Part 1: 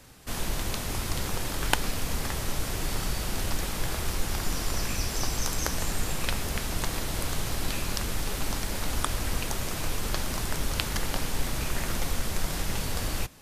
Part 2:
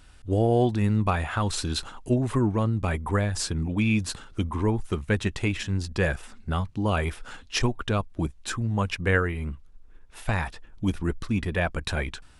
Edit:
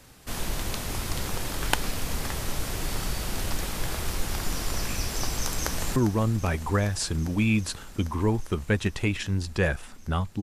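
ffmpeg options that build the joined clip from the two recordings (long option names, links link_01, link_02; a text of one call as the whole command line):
ffmpeg -i cue0.wav -i cue1.wav -filter_complex "[0:a]apad=whole_dur=10.42,atrim=end=10.42,atrim=end=5.962[link_01];[1:a]atrim=start=2.358:end=6.82[link_02];[link_01][link_02]acrossfade=duration=0.004:curve1=hsin:curve2=hsin,asplit=2[link_03][link_04];[link_04]afade=type=in:start_time=5.54:duration=0.01,afade=type=out:start_time=5.96:duration=0.01,aecho=0:1:400|800|1200|1600|2000|2400|2800|3200|3600|4000|4400|4800:0.266073|0.226162|0.192237|0.163402|0.138892|0.118058|0.100349|0.0852967|0.0725022|0.0616269|0.0523829|0.0445254[link_05];[link_03][link_05]amix=inputs=2:normalize=0" out.wav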